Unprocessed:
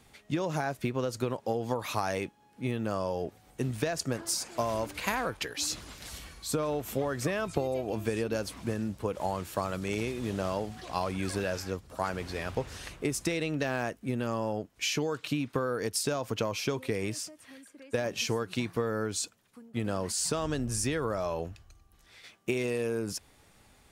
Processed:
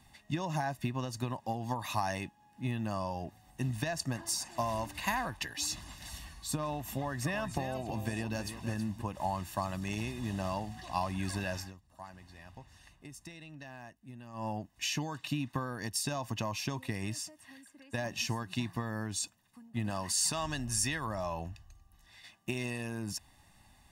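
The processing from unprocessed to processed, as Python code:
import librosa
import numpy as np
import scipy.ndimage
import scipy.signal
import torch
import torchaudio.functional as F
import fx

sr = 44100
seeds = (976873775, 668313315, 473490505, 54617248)

y = fx.echo_single(x, sr, ms=322, db=-9.5, at=(7.01, 9.02))
y = fx.tilt_shelf(y, sr, db=-4.0, hz=650.0, at=(19.9, 21.07))
y = fx.edit(y, sr, fx.fade_down_up(start_s=11.6, length_s=2.86, db=-14.0, fade_s=0.13), tone=tone)
y = y + 0.79 * np.pad(y, (int(1.1 * sr / 1000.0), 0))[:len(y)]
y = y * 10.0 ** (-4.5 / 20.0)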